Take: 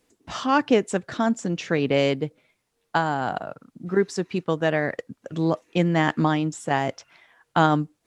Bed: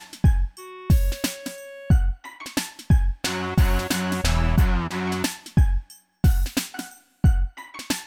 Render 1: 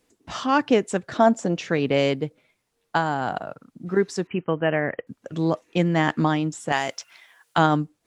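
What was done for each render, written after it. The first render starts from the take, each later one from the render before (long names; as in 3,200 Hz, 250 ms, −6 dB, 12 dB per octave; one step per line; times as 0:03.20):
0:01.15–0:01.59: parametric band 650 Hz +10 dB 1.3 octaves
0:04.27–0:05.07: linear-phase brick-wall low-pass 3,200 Hz
0:06.72–0:07.58: spectral tilt +3.5 dB per octave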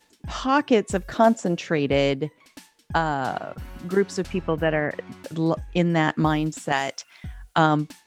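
mix in bed −19.5 dB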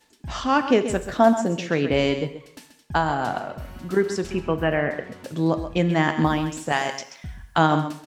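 single-tap delay 132 ms −10.5 dB
dense smooth reverb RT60 0.76 s, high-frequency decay 1×, pre-delay 0 ms, DRR 10.5 dB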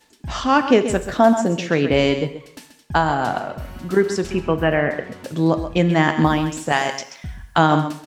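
level +4 dB
brickwall limiter −2 dBFS, peak gain reduction 2.5 dB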